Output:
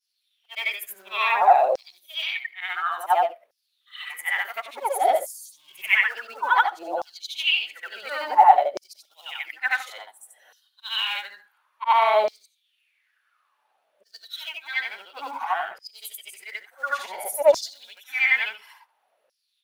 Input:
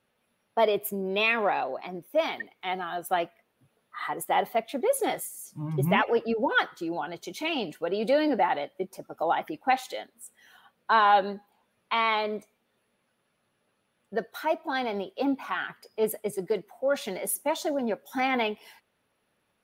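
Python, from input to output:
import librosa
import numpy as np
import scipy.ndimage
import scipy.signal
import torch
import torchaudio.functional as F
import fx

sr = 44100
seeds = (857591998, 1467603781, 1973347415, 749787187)

p1 = fx.frame_reverse(x, sr, frame_ms=187.0)
p2 = fx.low_shelf(p1, sr, hz=67.0, db=7.5)
p3 = fx.quant_float(p2, sr, bits=2)
p4 = p2 + (p3 * librosa.db_to_amplitude(-10.0))
y = fx.filter_lfo_highpass(p4, sr, shape='saw_down', hz=0.57, low_hz=540.0, high_hz=5400.0, q=6.8)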